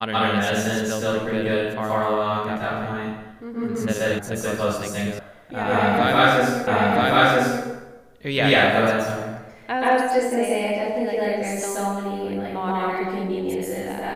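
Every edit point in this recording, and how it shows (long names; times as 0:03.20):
0:04.19: cut off before it has died away
0:05.19: cut off before it has died away
0:06.67: the same again, the last 0.98 s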